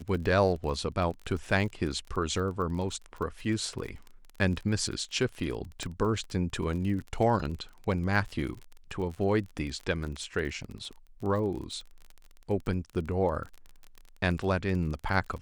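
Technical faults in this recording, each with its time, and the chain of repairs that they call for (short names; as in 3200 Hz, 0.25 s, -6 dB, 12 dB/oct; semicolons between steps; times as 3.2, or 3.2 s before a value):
crackle 30/s -36 dBFS
5.83 pop -21 dBFS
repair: de-click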